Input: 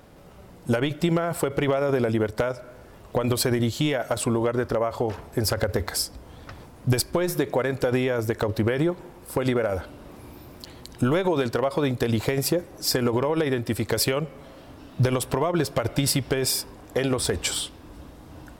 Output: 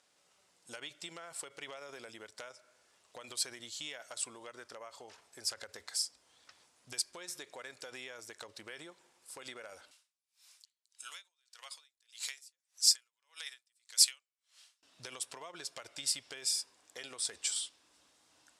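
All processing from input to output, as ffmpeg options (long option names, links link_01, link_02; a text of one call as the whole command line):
ffmpeg -i in.wav -filter_complex "[0:a]asettb=1/sr,asplit=3[link_01][link_02][link_03];[link_01]atrim=end=9.914[link_04];[link_02]atrim=start=9.91:end=14.83,asetpts=PTS-STARTPTS,afade=type=in:duration=0.004:curve=qsin,afade=type=out:start_time=4.916:duration=0.004:curve=qsin,highpass=1200,highshelf=frequency=2700:gain=11,aeval=exprs='val(0)*pow(10,-39*(0.5-0.5*cos(2*PI*1.7*n/s))/20)':channel_layout=same[link_05];[link_03]atrim=start=14.826[link_06];[link_04][link_05]acrossfade=duration=0.004:curve1=hsin:curve2=qsin[link_07];[link_07][link_06]acrossfade=duration=0.004:curve1=qsin:curve2=hsin,lowpass=frequency=8400:width=0.5412,lowpass=frequency=8400:width=1.3066,aderivative,volume=-4dB" out.wav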